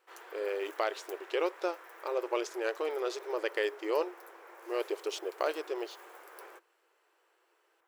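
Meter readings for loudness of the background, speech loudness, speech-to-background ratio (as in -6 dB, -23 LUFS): -51.0 LUFS, -35.0 LUFS, 16.0 dB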